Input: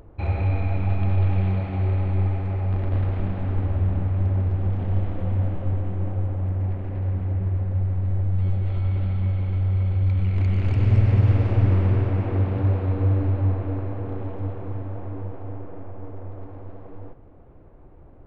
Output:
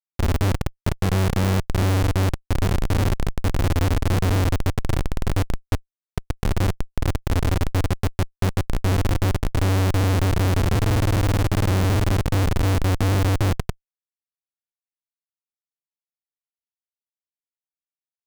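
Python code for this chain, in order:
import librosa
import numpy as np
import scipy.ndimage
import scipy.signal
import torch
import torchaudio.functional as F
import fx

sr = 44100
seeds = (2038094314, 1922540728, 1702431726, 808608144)

y = fx.quant_float(x, sr, bits=4)
y = fx.schmitt(y, sr, flips_db=-21.0)
y = y * librosa.db_to_amplitude(4.0)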